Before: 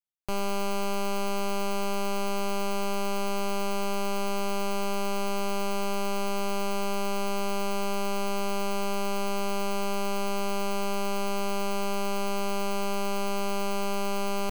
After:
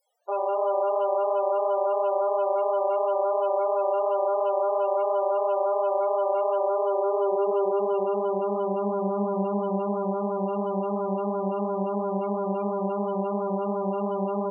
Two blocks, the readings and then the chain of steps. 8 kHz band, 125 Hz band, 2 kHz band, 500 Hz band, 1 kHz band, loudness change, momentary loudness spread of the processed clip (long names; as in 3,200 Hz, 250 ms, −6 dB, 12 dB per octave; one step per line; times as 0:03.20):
below −40 dB, can't be measured, below −15 dB, +8.5 dB, +4.5 dB, +5.0 dB, 3 LU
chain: low-shelf EQ 66 Hz −10 dB
notch filter 2,500 Hz, Q 30
upward compression, threshold −45 dBFS
chorus effect 2.9 Hz, delay 17 ms, depth 5.4 ms
high-pass filter sweep 560 Hz → 140 Hz, 0:06.48–0:10.21
reverb whose tail is shaped and stops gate 370 ms flat, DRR 10.5 dB
spectral peaks only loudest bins 16
level +5.5 dB